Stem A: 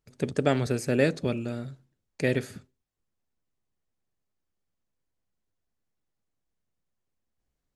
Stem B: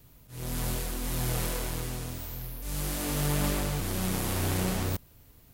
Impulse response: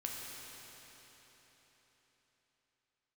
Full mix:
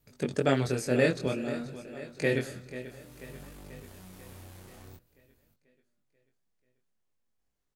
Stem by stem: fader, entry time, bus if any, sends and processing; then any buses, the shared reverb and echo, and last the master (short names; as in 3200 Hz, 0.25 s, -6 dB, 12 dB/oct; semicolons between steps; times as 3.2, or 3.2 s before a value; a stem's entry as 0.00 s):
+2.5 dB, 0.00 s, send -23.5 dB, echo send -14 dB, low shelf 250 Hz -5 dB
-8.0 dB, 0.00 s, no send, no echo send, compressor 6:1, threshold -32 dBFS, peak gain reduction 8 dB; tube stage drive 31 dB, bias 0.55; auto duck -19 dB, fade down 0.60 s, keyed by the first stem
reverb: on, RT60 4.2 s, pre-delay 8 ms
echo: feedback echo 0.488 s, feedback 58%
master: chorus 0.52 Hz, delay 20 ms, depth 4.1 ms